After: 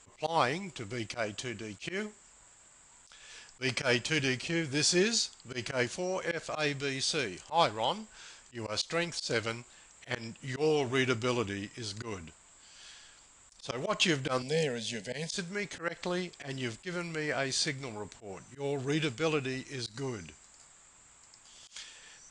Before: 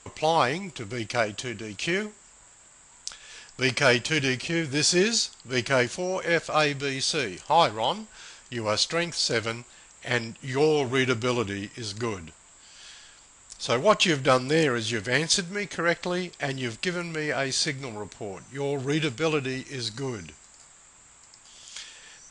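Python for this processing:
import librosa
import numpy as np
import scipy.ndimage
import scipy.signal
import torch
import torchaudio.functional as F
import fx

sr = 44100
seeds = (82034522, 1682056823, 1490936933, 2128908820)

y = fx.auto_swell(x, sr, attack_ms=110.0)
y = fx.fixed_phaser(y, sr, hz=330.0, stages=6, at=(14.42, 15.32))
y = y * librosa.db_to_amplitude(-5.0)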